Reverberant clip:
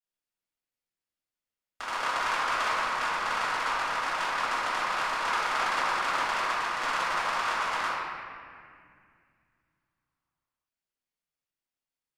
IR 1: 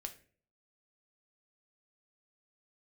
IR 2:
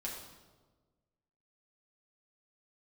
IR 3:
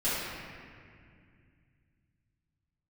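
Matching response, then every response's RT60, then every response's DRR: 3; no single decay rate, 1.4 s, 2.2 s; 5.5 dB, -4.0 dB, -12.0 dB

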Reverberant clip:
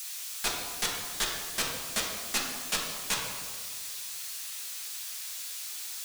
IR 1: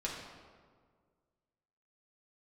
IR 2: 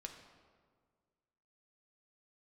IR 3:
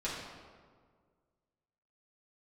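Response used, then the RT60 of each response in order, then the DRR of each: 1; 1.8 s, 1.8 s, 1.8 s; -4.5 dB, 3.0 dB, -8.5 dB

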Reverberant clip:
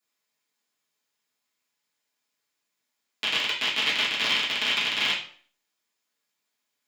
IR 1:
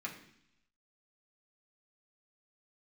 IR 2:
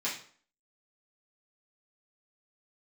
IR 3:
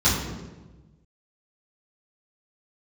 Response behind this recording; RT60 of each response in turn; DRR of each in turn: 2; 0.70 s, 0.50 s, 1.2 s; -3.0 dB, -8.5 dB, -11.0 dB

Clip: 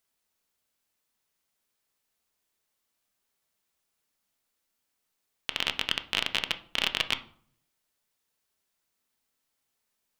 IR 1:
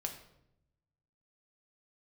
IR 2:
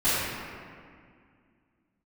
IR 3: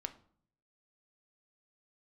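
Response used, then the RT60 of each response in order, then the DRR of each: 3; 0.80 s, 2.1 s, 0.55 s; 3.0 dB, -17.0 dB, 8.0 dB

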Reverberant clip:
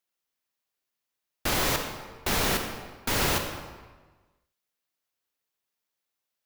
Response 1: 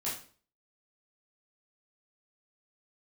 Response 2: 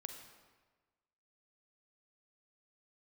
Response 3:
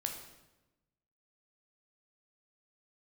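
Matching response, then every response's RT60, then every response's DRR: 2; 0.45 s, 1.4 s, 1.0 s; -8.5 dB, 5.0 dB, 2.5 dB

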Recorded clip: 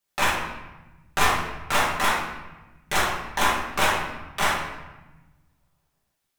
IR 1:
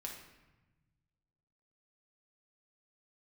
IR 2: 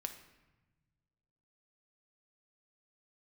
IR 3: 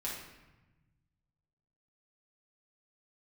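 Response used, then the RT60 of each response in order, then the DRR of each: 3; 1.1 s, 1.1 s, 1.1 s; -1.0 dB, 6.0 dB, -6.5 dB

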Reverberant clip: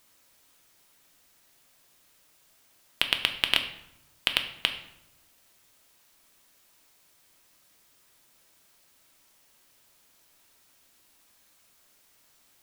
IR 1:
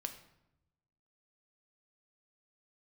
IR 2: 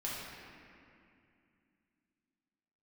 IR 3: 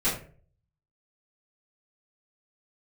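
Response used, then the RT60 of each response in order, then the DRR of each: 1; 0.85 s, 2.5 s, 0.45 s; 5.5 dB, -7.0 dB, -13.0 dB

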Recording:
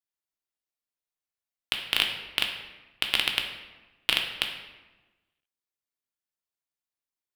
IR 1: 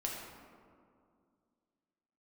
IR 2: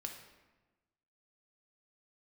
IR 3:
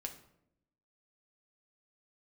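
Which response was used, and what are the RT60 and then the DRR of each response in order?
2; 2.3 s, 1.2 s, 0.75 s; -2.5 dB, 2.0 dB, 3.0 dB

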